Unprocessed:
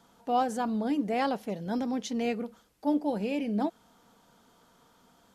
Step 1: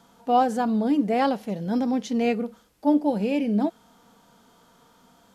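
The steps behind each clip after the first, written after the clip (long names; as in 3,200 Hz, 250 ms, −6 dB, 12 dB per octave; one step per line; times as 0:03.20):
harmonic and percussive parts rebalanced harmonic +7 dB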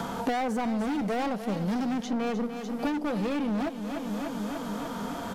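hard clipping −27 dBFS, distortion −6 dB
on a send: repeating echo 296 ms, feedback 59%, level −13 dB
on the sum: multiband upward and downward compressor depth 100%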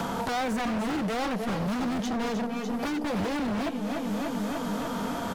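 on a send: single-tap delay 312 ms −10 dB
on the sum: wave folding −26.5 dBFS
level +3 dB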